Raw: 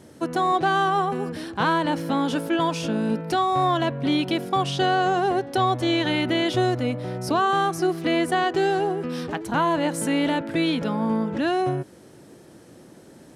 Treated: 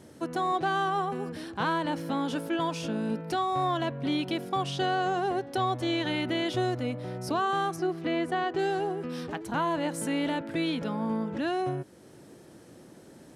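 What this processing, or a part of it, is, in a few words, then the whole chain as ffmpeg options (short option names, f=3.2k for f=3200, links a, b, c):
parallel compression: -filter_complex "[0:a]asettb=1/sr,asplit=3[a][b][c];[a]atrim=end=7.764[d];[b]atrim=start=7.76:end=8.59,asetpts=PTS-STARTPTS,afade=t=in:d=0.004:c=qsin,afade=t=out:st=0.826:d=0.004:c=qsin,aemphasis=mode=reproduction:type=50kf[e];[c]atrim=start=8.586[f];[d][e]acrossfade=d=0.004:c1=hsin:c2=qsin[g];[g][f]acrossfade=d=0.004:c1=qsin:c2=hsin,asplit=2[h][i];[i]acompressor=threshold=-42dB:ratio=6,volume=-5dB[j];[h][j]amix=inputs=2:normalize=0,volume=-7dB"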